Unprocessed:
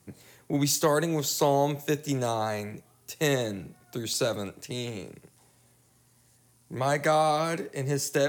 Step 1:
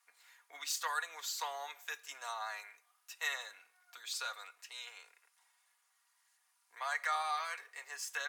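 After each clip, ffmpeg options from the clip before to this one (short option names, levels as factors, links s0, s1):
-af "highpass=f=1100:w=0.5412,highpass=f=1100:w=1.3066,highshelf=f=3300:g=-11.5,aecho=1:1:4.2:0.56,volume=0.75"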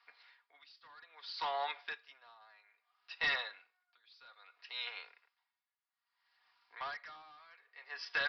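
-af "aresample=11025,asoftclip=type=hard:threshold=0.0158,aresample=44100,aeval=exprs='val(0)*pow(10,-27*(0.5-0.5*cos(2*PI*0.61*n/s))/20)':c=same,volume=2.37"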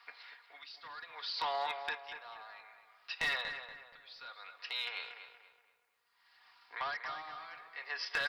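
-filter_complex "[0:a]acompressor=threshold=0.00355:ratio=2,aeval=exprs='clip(val(0),-1,0.0119)':c=same,asplit=2[s0][s1];[s1]adelay=237,lowpass=f=2600:p=1,volume=0.398,asplit=2[s2][s3];[s3]adelay=237,lowpass=f=2600:p=1,volume=0.41,asplit=2[s4][s5];[s5]adelay=237,lowpass=f=2600:p=1,volume=0.41,asplit=2[s6][s7];[s7]adelay=237,lowpass=f=2600:p=1,volume=0.41,asplit=2[s8][s9];[s9]adelay=237,lowpass=f=2600:p=1,volume=0.41[s10];[s0][s2][s4][s6][s8][s10]amix=inputs=6:normalize=0,volume=2.99"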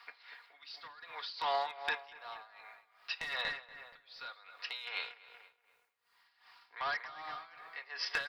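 -af "tremolo=f=2.6:d=0.78,volume=1.58"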